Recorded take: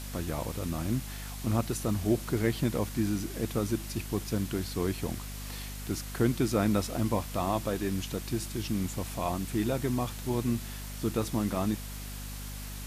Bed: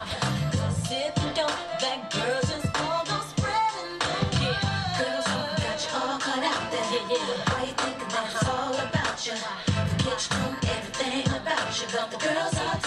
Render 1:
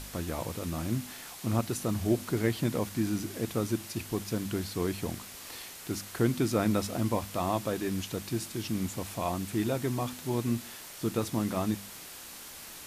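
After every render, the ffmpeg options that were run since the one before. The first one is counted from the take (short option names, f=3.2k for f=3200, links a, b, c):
-af "bandreject=f=50:t=h:w=4,bandreject=f=100:t=h:w=4,bandreject=f=150:t=h:w=4,bandreject=f=200:t=h:w=4,bandreject=f=250:t=h:w=4"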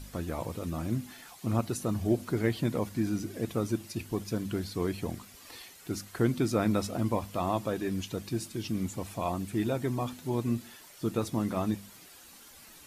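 -af "afftdn=nr=10:nf=-46"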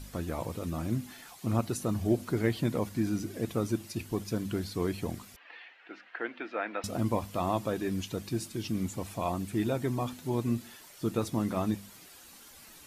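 -filter_complex "[0:a]asettb=1/sr,asplit=3[a][b][c];[a]atrim=end=5.364[d];[b]atrim=start=5.36:end=6.84,asetpts=PTS-STARTPTS,afade=t=in:d=0.004:c=qsin,afade=t=out:st=1.476:d=0.004:c=qsin,highpass=f=400:w=0.5412,highpass=f=400:w=1.3066,equalizer=f=400:t=q:w=4:g=-10,equalizer=f=570:t=q:w=4:g=-4,equalizer=f=1.1k:t=q:w=4:g=-5,equalizer=f=1.7k:t=q:w=4:g=7,equalizer=f=2.7k:t=q:w=4:g=4,lowpass=f=2.8k:w=0.5412,lowpass=f=2.8k:w=1.3066[e];[c]atrim=start=6.836[f];[d][e]acrossfade=d=0.004:c1=hsin:c2=qsin[g];[g][f]acrossfade=d=0.004:c1=qsin:c2=hsin"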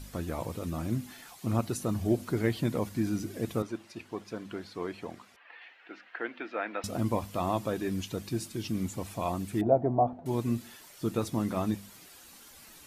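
-filter_complex "[0:a]asettb=1/sr,asplit=3[a][b][c];[a]atrim=end=3.624[d];[b]atrim=start=3.62:end=5.62,asetpts=PTS-STARTPTS,afade=t=in:d=0.004:c=qsin,afade=t=out:st=1.996:d=0.004:c=qsin,bandpass=f=1.1k:t=q:w=0.51[e];[c]atrim=start=5.616[f];[d][e]acrossfade=d=0.004:c1=hsin:c2=qsin[g];[g][f]acrossfade=d=0.004:c1=qsin:c2=hsin,asettb=1/sr,asplit=3[h][i][j];[h]atrim=end=9.614[k];[i]atrim=start=9.61:end=10.26,asetpts=PTS-STARTPTS,afade=t=in:d=0.004:c=qsin,afade=t=out:st=0.646:d=0.004:c=qsin,lowpass=f=700:t=q:w=6.2[l];[j]atrim=start=10.256[m];[k][l]acrossfade=d=0.004:c1=hsin:c2=qsin[n];[n][m]acrossfade=d=0.004:c1=qsin:c2=hsin"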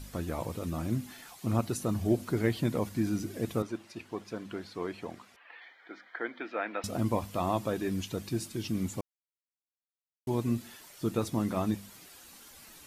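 -filter_complex "[0:a]asettb=1/sr,asplit=3[a][b][c];[a]atrim=end=5.604[d];[b]atrim=start=5.6:end=6.41,asetpts=PTS-STARTPTS,afade=t=in:d=0.004:c=qsin,afade=t=out:st=0.806:d=0.004:c=qsin,asuperstop=centerf=2700:order=8:qfactor=4.8[e];[c]atrim=start=6.406[f];[d][e]acrossfade=d=0.004:c1=hsin:c2=qsin[g];[g][f]acrossfade=d=0.004:c1=qsin:c2=hsin,asplit=3[h][i][j];[h]atrim=end=9.01,asetpts=PTS-STARTPTS,afade=t=out:st=9.006:d=0.004:c=hsin[k];[i]atrim=start=9.01:end=10.27,asetpts=PTS-STARTPTS,volume=0[l];[j]atrim=start=10.27,asetpts=PTS-STARTPTS,afade=t=in:d=0.004:c=hsin[m];[k][l][m]concat=n=3:v=0:a=1"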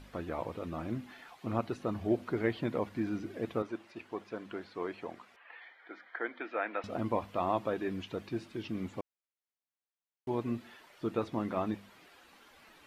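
-filter_complex "[0:a]acrossover=split=4600[a][b];[b]acompressor=threshold=-60dB:ratio=4:attack=1:release=60[c];[a][c]amix=inputs=2:normalize=0,bass=f=250:g=-9,treble=f=4k:g=-11"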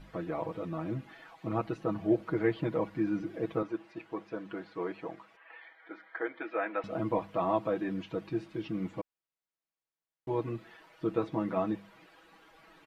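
-af "highshelf=f=3.5k:g=-10.5,aecho=1:1:6.2:0.84"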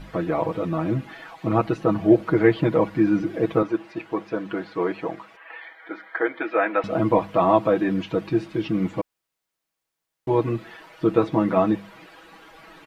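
-af "volume=11.5dB"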